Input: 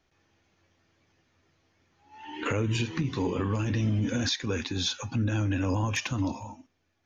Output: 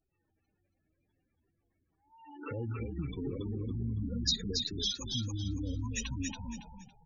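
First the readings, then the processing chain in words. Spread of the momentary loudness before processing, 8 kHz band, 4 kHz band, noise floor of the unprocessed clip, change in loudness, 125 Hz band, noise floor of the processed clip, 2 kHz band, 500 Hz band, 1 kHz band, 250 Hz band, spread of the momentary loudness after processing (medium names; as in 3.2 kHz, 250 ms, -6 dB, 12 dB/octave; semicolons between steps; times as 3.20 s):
7 LU, no reading, -1.0 dB, -74 dBFS, -6.5 dB, -8.0 dB, -80 dBFS, -14.0 dB, -10.0 dB, -14.5 dB, -8.0 dB, 12 LU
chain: wow and flutter 89 cents; spectral gate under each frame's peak -10 dB strong; resonant high shelf 3.2 kHz +10 dB, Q 1.5; frequency-shifting echo 279 ms, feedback 31%, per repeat -40 Hz, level -4 dB; trim -8.5 dB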